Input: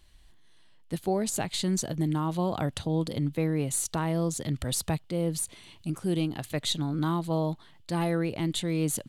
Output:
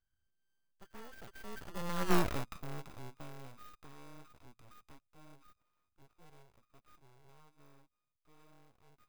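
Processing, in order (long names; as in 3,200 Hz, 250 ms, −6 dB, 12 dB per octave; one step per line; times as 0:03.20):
samples sorted by size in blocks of 32 samples
source passing by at 0:02.14, 41 m/s, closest 3.2 metres
full-wave rectification
level +3.5 dB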